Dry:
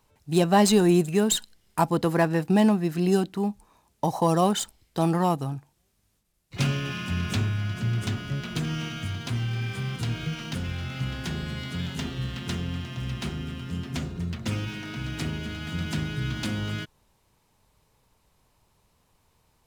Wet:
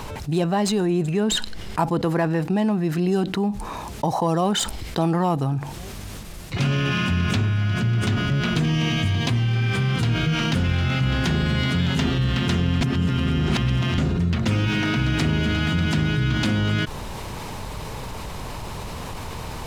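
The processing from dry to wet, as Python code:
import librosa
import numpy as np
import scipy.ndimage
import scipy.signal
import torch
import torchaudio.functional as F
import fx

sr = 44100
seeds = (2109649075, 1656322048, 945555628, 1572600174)

y = fx.high_shelf(x, sr, hz=6800.0, db=-7.0, at=(0.85, 1.79))
y = fx.notch(y, sr, hz=1400.0, q=5.6, at=(8.61, 9.56))
y = fx.edit(y, sr, fx.reverse_span(start_s=12.81, length_s=1.17), tone=tone)
y = fx.rider(y, sr, range_db=10, speed_s=0.5)
y = fx.high_shelf(y, sr, hz=6800.0, db=-11.0)
y = fx.env_flatten(y, sr, amount_pct=70)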